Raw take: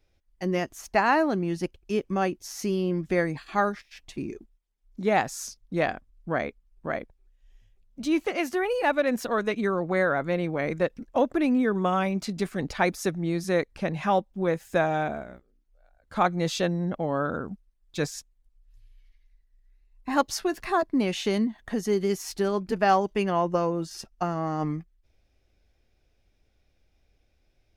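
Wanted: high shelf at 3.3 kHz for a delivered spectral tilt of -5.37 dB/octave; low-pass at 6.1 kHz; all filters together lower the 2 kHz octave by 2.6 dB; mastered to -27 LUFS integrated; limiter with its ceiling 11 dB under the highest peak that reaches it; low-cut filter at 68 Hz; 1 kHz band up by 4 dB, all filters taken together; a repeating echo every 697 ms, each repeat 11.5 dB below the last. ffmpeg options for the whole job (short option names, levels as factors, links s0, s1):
-af "highpass=68,lowpass=6100,equalizer=f=1000:t=o:g=6.5,equalizer=f=2000:t=o:g=-8,highshelf=f=3300:g=7,alimiter=limit=0.141:level=0:latency=1,aecho=1:1:697|1394|2091:0.266|0.0718|0.0194,volume=1.19"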